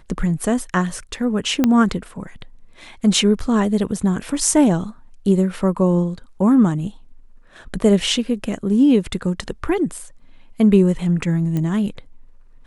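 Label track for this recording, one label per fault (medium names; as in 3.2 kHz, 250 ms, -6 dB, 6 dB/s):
1.640000	1.640000	pop -4 dBFS
11.570000	11.570000	pop -13 dBFS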